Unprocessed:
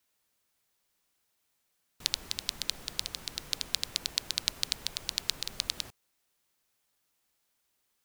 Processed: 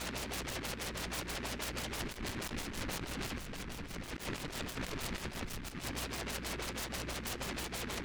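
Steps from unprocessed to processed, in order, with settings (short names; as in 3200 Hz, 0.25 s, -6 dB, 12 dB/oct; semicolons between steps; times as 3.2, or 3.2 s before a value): zero-crossing step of -20.5 dBFS; 3.38–4.05 tone controls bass +4 dB, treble -12 dB; expander -13 dBFS; decimation with a swept rate 12×, swing 60% 2.3 Hz; on a send at -9 dB: reverb RT60 0.55 s, pre-delay 3 ms; on the sum: LFO low-pass sine 6.2 Hz 250–4000 Hz; hum 60 Hz, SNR 11 dB; negative-ratio compressor -49 dBFS, ratio -0.5; 5.44–5.86 bell 610 Hz -13 dB -> -2.5 dB 1.7 oct; noise-modulated delay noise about 1600 Hz, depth 0.28 ms; gain +10 dB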